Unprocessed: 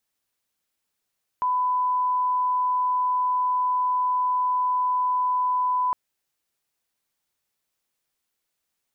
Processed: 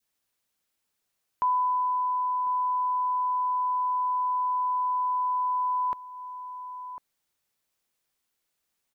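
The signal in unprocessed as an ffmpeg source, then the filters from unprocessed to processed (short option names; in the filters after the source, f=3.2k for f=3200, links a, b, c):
-f lavfi -i "sine=f=1000:d=4.51:r=44100,volume=-1.94dB"
-filter_complex "[0:a]asplit=2[a][b];[b]adelay=1050,volume=-13dB,highshelf=f=4k:g=-23.6[c];[a][c]amix=inputs=2:normalize=0,adynamicequalizer=threshold=0.0141:dfrequency=920:dqfactor=1.1:tfrequency=920:tqfactor=1.1:attack=5:release=100:ratio=0.375:range=2.5:mode=cutabove:tftype=bell"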